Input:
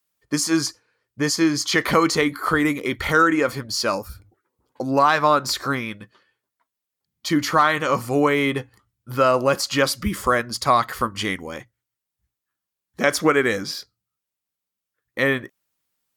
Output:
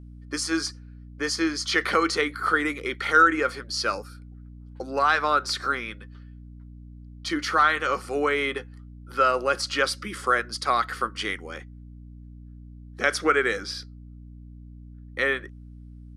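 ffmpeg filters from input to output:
-af "highpass=f=260:w=0.5412,highpass=f=260:w=1.3066,equalizer=f=270:t=q:w=4:g=-8,equalizer=f=620:t=q:w=4:g=-6,equalizer=f=970:t=q:w=4:g=-8,equalizer=f=1.4k:t=q:w=4:g=6,equalizer=f=7k:t=q:w=4:g=-7,lowpass=f=9.8k:w=0.5412,lowpass=f=9.8k:w=1.3066,aeval=exprs='val(0)+0.0112*(sin(2*PI*60*n/s)+sin(2*PI*2*60*n/s)/2+sin(2*PI*3*60*n/s)/3+sin(2*PI*4*60*n/s)/4+sin(2*PI*5*60*n/s)/5)':c=same,volume=-3dB"

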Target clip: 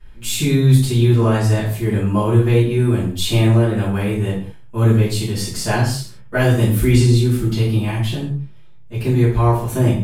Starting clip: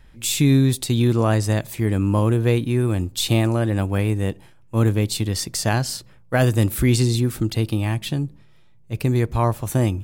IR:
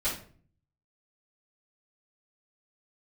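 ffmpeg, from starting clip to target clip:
-filter_complex "[1:a]atrim=start_sample=2205,atrim=end_sample=6615,asetrate=30870,aresample=44100[a];[0:a][a]afir=irnorm=-1:irlink=0,volume=-7.5dB"

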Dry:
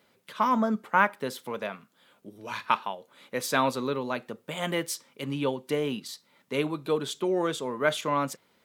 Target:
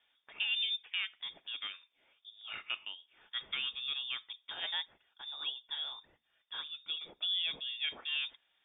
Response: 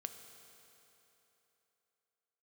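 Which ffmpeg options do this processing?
-filter_complex "[0:a]alimiter=limit=-15.5dB:level=0:latency=1:release=391,asettb=1/sr,asplit=3[a][b][c];[a]atrim=end=4.834[d];[b]atrim=start=4.83:end=7.21,asetpts=PTS-STARTPTS,afade=t=in:d=0.004:c=qsin,afade=t=out:st=2.376:d=0.004:c=qsin,flanger=delay=0.7:depth=5.8:regen=34:speed=1.7:shape=triangular[e];[c]atrim=start=7.206[f];[d][e]acrossfade=d=0.004:c1=hsin:c2=qsin[g];[g][f]acrossfade=d=0.004:c1=qsin:c2=hsin,lowpass=f=3.2k:t=q:w=0.5098,lowpass=f=3.2k:t=q:w=0.6013,lowpass=f=3.2k:t=q:w=0.9,lowpass=f=3.2k:t=q:w=2.563,afreqshift=-3800,volume=-8dB"

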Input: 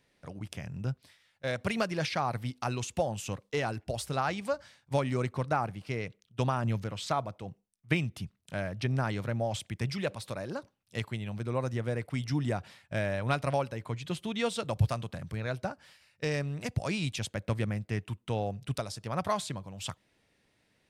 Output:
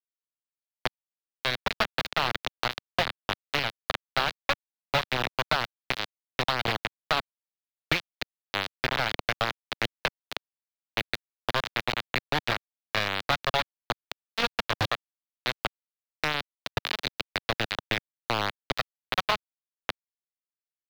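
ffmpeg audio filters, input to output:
-filter_complex "[0:a]aeval=exprs='val(0)+0.5*0.01*sgn(val(0))':c=same,afftdn=nr=15:nf=-46,asplit=2[a][b];[b]aecho=0:1:288:0.251[c];[a][c]amix=inputs=2:normalize=0,acrusher=bits=3:mix=0:aa=0.000001,equalizer=f=1k:t=o:w=1:g=-4,equalizer=f=4k:t=o:w=1:g=11,equalizer=f=8k:t=o:w=1:g=-8,acrossover=split=180|890|6700[d][e][f][g];[d]acompressor=threshold=-38dB:ratio=4[h];[e]acompressor=threshold=-45dB:ratio=4[i];[f]acompressor=threshold=-30dB:ratio=4[j];[g]acompressor=threshold=-45dB:ratio=4[k];[h][i][j][k]amix=inputs=4:normalize=0,equalizer=f=860:t=o:w=2.5:g=9,acrossover=split=3900[l][m];[l]acontrast=61[n];[n][m]amix=inputs=2:normalize=0,volume=-2.5dB"

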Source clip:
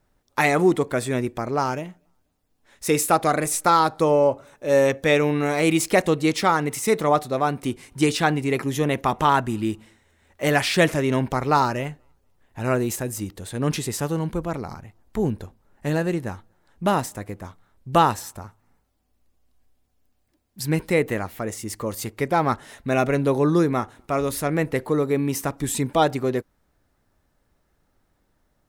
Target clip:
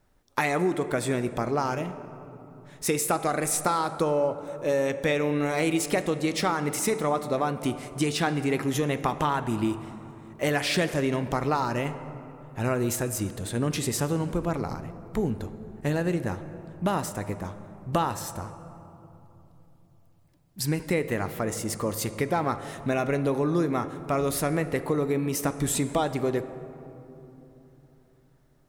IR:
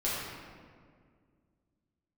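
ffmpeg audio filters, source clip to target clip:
-filter_complex "[0:a]acompressor=threshold=-23dB:ratio=6,asplit=2[a][b];[1:a]atrim=start_sample=2205,asetrate=22491,aresample=44100[c];[b][c]afir=irnorm=-1:irlink=0,volume=-22.5dB[d];[a][d]amix=inputs=2:normalize=0"

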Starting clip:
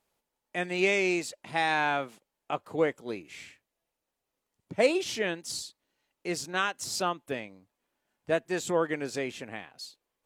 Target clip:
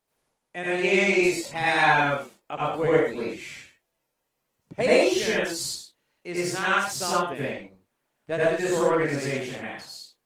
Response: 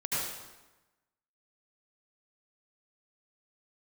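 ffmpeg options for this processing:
-filter_complex "[0:a]asettb=1/sr,asplit=3[a][b][c];[a]atrim=end=7.134[d];[b]atrim=start=7.13:end=8.98,asetpts=PTS-STARTPTS,afade=t=in:d=0.004:c=qsin,afade=t=out:st=1.846:d=0.004:c=qsin,aeval=exprs='0.2*(cos(1*acos(clip(val(0)/0.2,-1,1)))-cos(1*PI/2))+0.0251*(cos(2*acos(clip(val(0)/0.2,-1,1)))-cos(2*PI/2))+0.00562*(cos(4*acos(clip(val(0)/0.2,-1,1)))-cos(4*PI/2))+0.00316*(cos(7*acos(clip(val(0)/0.2,-1,1)))-cos(7*PI/2))':c=same[e];[c]atrim=start=8.976[f];[d][e]acrossfade=d=0.004:c1=hsin:c2=qsin[g];[g][f]acrossfade=d=0.004:c1=qsin:c2=hsin[h];[1:a]atrim=start_sample=2205,afade=t=out:st=0.27:d=0.01,atrim=end_sample=12348[i];[h][i]afir=irnorm=-1:irlink=0" -ar 48000 -c:a libopus -b:a 20k

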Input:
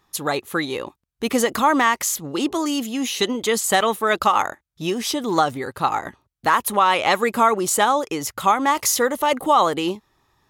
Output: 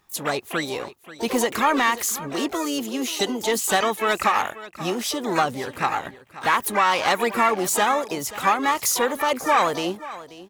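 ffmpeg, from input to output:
-filter_complex "[0:a]equalizer=f=310:t=o:w=0.3:g=-2.5,acontrast=30,asplit=3[a][b][c];[b]asetrate=66075,aresample=44100,atempo=0.66742,volume=-11dB[d];[c]asetrate=88200,aresample=44100,atempo=0.5,volume=-10dB[e];[a][d][e]amix=inputs=3:normalize=0,acrusher=bits=10:mix=0:aa=0.000001,asplit=2[f][g];[g]aecho=0:1:534:0.15[h];[f][h]amix=inputs=2:normalize=0,volume=-7.5dB"

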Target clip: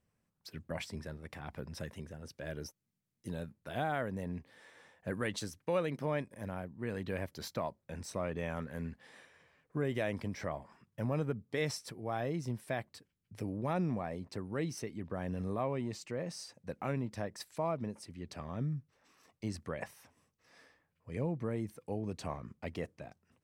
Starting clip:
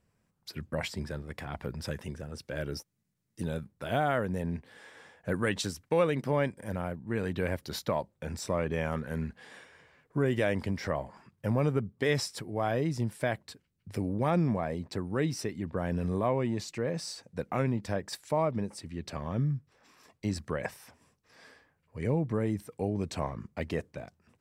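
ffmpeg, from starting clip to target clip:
-af "asetrate=45938,aresample=44100,volume=-6.5dB"

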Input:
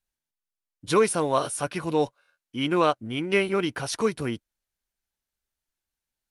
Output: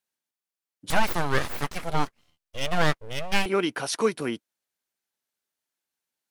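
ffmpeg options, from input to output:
-filter_complex "[0:a]highpass=210,asettb=1/sr,asplit=3[a][b][c];[a]atrim=end=0.904[d];[b]atrim=start=0.9:end=3.46,asetpts=PTS-STARTPTS,afade=t=in:d=0.004:c=qsin,afade=t=out:st=2.556:d=0.004:c=qsin,aeval=exprs='abs(val(0))':c=same[e];[c]atrim=start=3.456[f];[d][e]acrossfade=d=0.004:c1=hsin:c2=qsin[g];[g][f]acrossfade=d=0.004:c1=qsin:c2=hsin,volume=1.5dB"

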